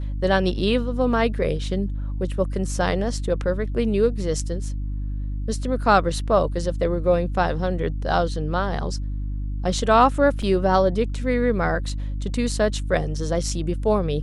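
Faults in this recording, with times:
hum 50 Hz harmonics 6 -27 dBFS
10.42 s: dropout 4.9 ms

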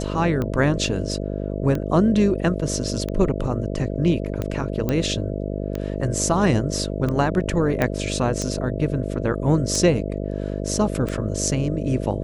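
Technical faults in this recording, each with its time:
buzz 50 Hz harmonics 13 -27 dBFS
tick 45 rpm -14 dBFS
4.89 s: pop -10 dBFS
7.82 s: pop -8 dBFS

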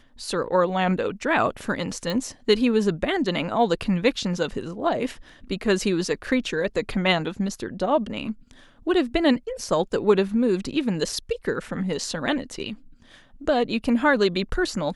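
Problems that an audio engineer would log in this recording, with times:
2.10 s: pop -16 dBFS

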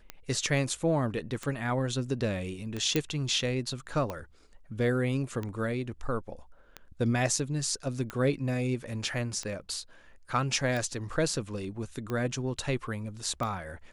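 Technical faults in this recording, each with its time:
tick 45 rpm -21 dBFS
2.96 s: pop -12 dBFS

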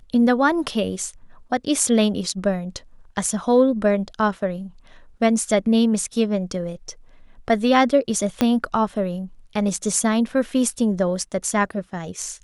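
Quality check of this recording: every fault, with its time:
8.41 s: pop -5 dBFS

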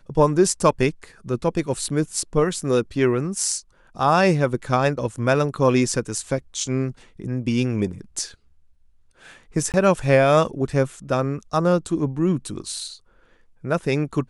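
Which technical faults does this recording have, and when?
9.72–9.74 s: dropout 18 ms

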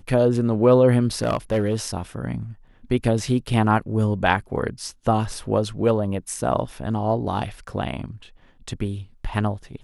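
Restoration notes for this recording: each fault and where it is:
1.22–1.76 s: clipped -15.5 dBFS

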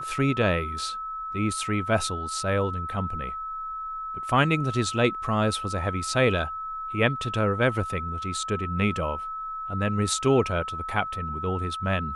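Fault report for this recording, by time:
whine 1.3 kHz -31 dBFS

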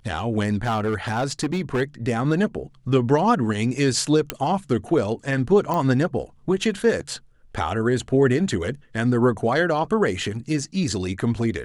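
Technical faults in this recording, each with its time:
0.64–1.82 s: clipped -18.5 dBFS
4.30 s: pop -7 dBFS
5.74 s: pop -13 dBFS

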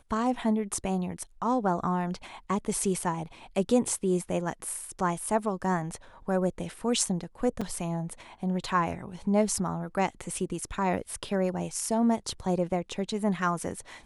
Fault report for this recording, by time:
7.61–7.62 s: dropout 5.1 ms

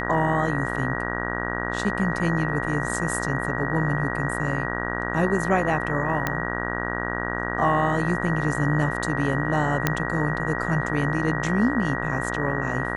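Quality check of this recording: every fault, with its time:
buzz 60 Hz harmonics 33 -29 dBFS
whine 1.9 kHz -31 dBFS
6.27 s: pop -9 dBFS
9.87 s: pop -5 dBFS

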